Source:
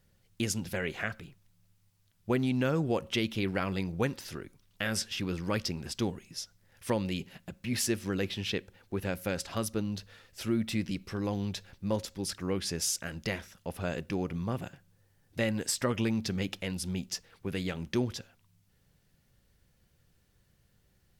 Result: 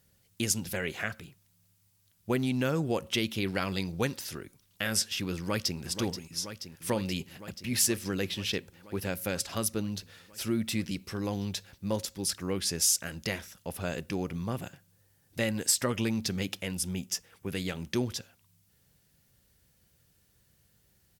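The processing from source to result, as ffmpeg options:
-filter_complex "[0:a]asettb=1/sr,asplit=3[a][b][c];[a]atrim=end=3.464[d];[b]atrim=start=3.46:end=4.15,asetpts=PTS-STARTPTS,afade=t=in:d=0.004:c=qsin,afade=t=out:st=0.686:d=0.004:c=qsin,equalizer=f=4.3k:w=1.5:g=6[e];[c]atrim=start=4.146[f];[d][e]acrossfade=d=0.004:c1=hsin:c2=qsin[g];[g][f]acrossfade=d=0.004:c1=qsin:c2=hsin,asplit=2[h][i];[i]afade=t=in:st=5.36:d=0.01,afade=t=out:st=5.79:d=0.01,aecho=0:1:480|960|1440|1920|2400|2880|3360|3840|4320|4800|5280|5760:0.334965|0.267972|0.214378|0.171502|0.137202|0.109761|0.0878092|0.0702473|0.0561979|0.0449583|0.0359666|0.0287733[j];[h][j]amix=inputs=2:normalize=0,asettb=1/sr,asplit=3[k][l][m];[k]atrim=end=16.614[n];[l]atrim=start=16.61:end=17.5,asetpts=PTS-STARTPTS,afade=t=in:d=0.004:c=qsin,afade=t=out:st=0.886:d=0.004:c=qsin,equalizer=f=4.2k:w=4.1:g=-8[o];[m]atrim=start=17.496[p];[n][o]acrossfade=d=0.004:c1=hsin:c2=qsin[q];[q][p]acrossfade=d=0.004:c1=qsin:c2=hsin,highpass=43,aemphasis=mode=production:type=cd"

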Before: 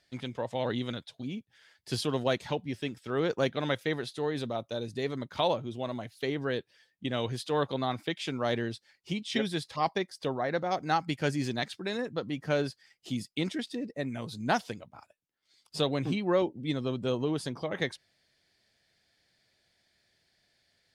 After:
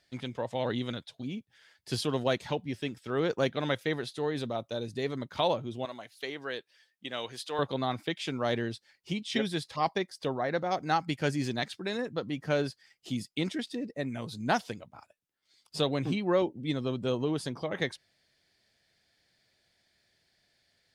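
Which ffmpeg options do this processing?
-filter_complex "[0:a]asettb=1/sr,asplit=3[a][b][c];[a]atrim=end=5.854[d];[b]atrim=start=5.85:end=7.59,asetpts=PTS-STARTPTS,afade=t=in:d=0.004:c=qsin,afade=t=out:st=1.736:d=0.004:c=qsin,highpass=f=840:p=1[e];[c]atrim=start=7.586[f];[d][e]acrossfade=d=0.004:c1=hsin:c2=qsin[g];[g][f]acrossfade=d=0.004:c1=qsin:c2=hsin"

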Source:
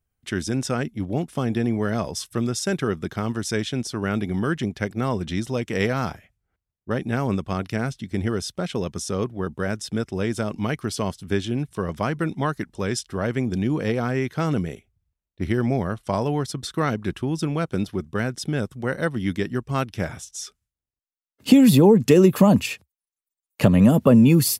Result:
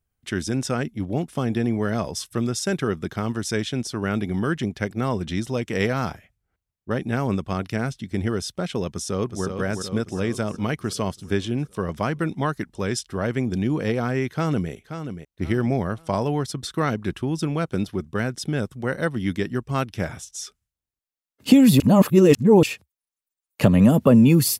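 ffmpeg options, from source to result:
-filter_complex "[0:a]asplit=2[a][b];[b]afade=t=in:st=8.92:d=0.01,afade=t=out:st=9.45:d=0.01,aecho=0:1:370|740|1110|1480|1850|2220|2590|2960:0.501187|0.300712|0.180427|0.108256|0.0649539|0.0389723|0.0233834|0.01403[c];[a][c]amix=inputs=2:normalize=0,asplit=2[d][e];[e]afade=t=in:st=14.31:d=0.01,afade=t=out:st=14.71:d=0.01,aecho=0:1:530|1060|1590:0.354813|0.106444|0.0319332[f];[d][f]amix=inputs=2:normalize=0,asplit=3[g][h][i];[g]atrim=end=21.802[j];[h]atrim=start=21.798:end=22.632,asetpts=PTS-STARTPTS,areverse[k];[i]atrim=start=22.628[l];[j][k]acrossfade=d=0.004:c1=hsin:c2=hsin[m];[m][l]acrossfade=d=0.004:c1=hsin:c2=hsin"

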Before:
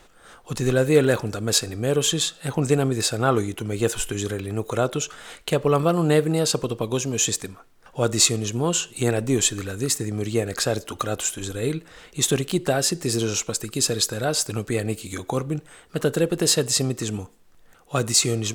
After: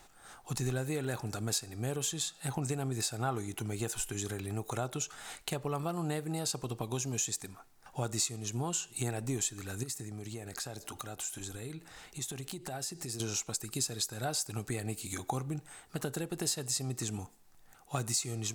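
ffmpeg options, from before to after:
-filter_complex "[0:a]asettb=1/sr,asplit=3[a][b][c];[a]atrim=end=9.834[d];[b]atrim=start=9.83:end=13.2,asetpts=PTS-STARTPTS,afade=t=in:d=0.004:c=qsin,afade=t=out:st=3.366:d=0.004:c=qsin,acompressor=threshold=-33dB:ratio=4:attack=3.2:release=140:knee=1:detection=peak[e];[c]atrim=start=13.196[f];[d][e]acrossfade=d=0.004:c1=hsin:c2=qsin[g];[g][f]acrossfade=d=0.004:c1=qsin:c2=hsin,highshelf=f=4k:g=8,acompressor=threshold=-26dB:ratio=3,equalizer=f=125:t=o:w=0.33:g=5,equalizer=f=500:t=o:w=0.33:g=-7,equalizer=f=800:t=o:w=0.33:g=8,equalizer=f=3.15k:t=o:w=0.33:g=-4,volume=-7.5dB"

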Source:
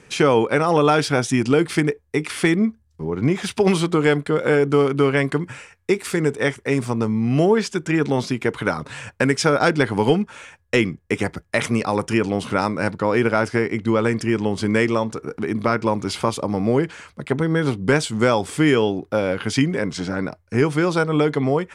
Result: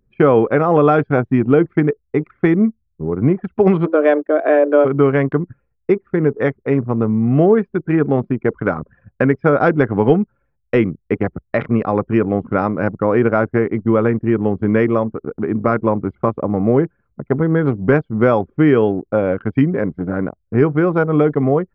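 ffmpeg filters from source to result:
-filter_complex "[0:a]asplit=3[a][b][c];[a]afade=t=out:st=3.85:d=0.02[d];[b]afreqshift=150,afade=t=in:st=3.85:d=0.02,afade=t=out:st=4.84:d=0.02[e];[c]afade=t=in:st=4.84:d=0.02[f];[d][e][f]amix=inputs=3:normalize=0,lowpass=1.4k,bandreject=f=910:w=9,anlmdn=100,volume=4.5dB"

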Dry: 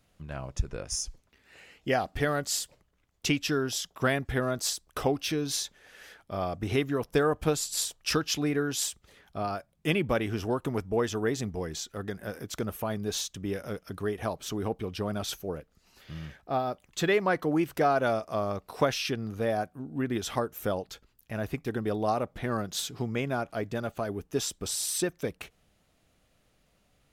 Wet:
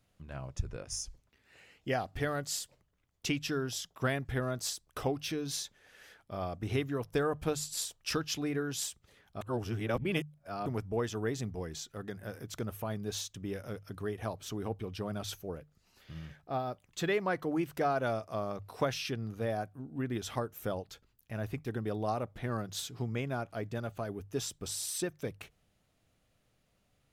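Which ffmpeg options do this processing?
-filter_complex "[0:a]asplit=3[a][b][c];[a]atrim=end=9.412[d];[b]atrim=start=9.408:end=10.662,asetpts=PTS-STARTPTS,areverse[e];[c]atrim=start=10.658[f];[d][e]acrossfade=d=0.004:c1=hsin:c2=hsin[g];[g][f]acrossfade=d=0.004:c1=hsin:c2=hsin,equalizer=f=110:w=1.9:g=6,bandreject=f=50:t=h:w=6,bandreject=f=100:t=h:w=6,bandreject=f=150:t=h:w=6,volume=-6dB"

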